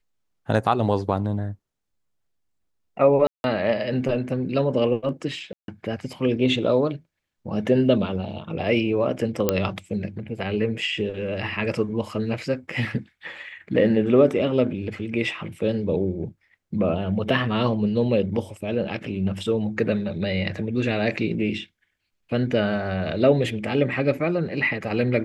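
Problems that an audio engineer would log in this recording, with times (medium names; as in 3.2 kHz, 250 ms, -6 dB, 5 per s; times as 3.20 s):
3.27–3.44 s: dropout 171 ms
5.53–5.68 s: dropout 152 ms
9.49 s: pop -5 dBFS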